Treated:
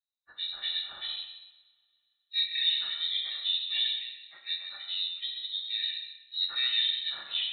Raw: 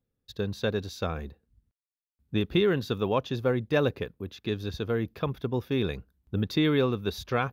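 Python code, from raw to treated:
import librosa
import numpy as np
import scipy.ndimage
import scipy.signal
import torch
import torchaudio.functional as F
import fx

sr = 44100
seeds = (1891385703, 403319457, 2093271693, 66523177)

p1 = fx.partial_stretch(x, sr, pct=81)
p2 = p1 + fx.echo_single(p1, sr, ms=128, db=-8.5, dry=0)
p3 = fx.noise_reduce_blind(p2, sr, reduce_db=11)
p4 = fx.rev_double_slope(p3, sr, seeds[0], early_s=0.9, late_s=3.0, knee_db=-26, drr_db=1.0)
p5 = fx.freq_invert(p4, sr, carrier_hz=4000)
y = p5 * librosa.db_to_amplitude(-6.0)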